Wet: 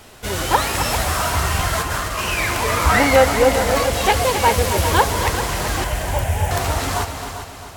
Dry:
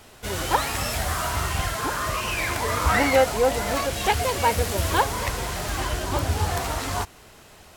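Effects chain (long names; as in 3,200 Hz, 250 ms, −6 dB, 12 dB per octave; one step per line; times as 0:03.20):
0:01.73–0:02.19: compressor whose output falls as the input rises −29 dBFS, ratio −0.5
0:05.84–0:06.51: phaser with its sweep stopped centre 1,200 Hz, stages 6
echo machine with several playback heads 132 ms, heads second and third, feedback 46%, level −10 dB
level +5 dB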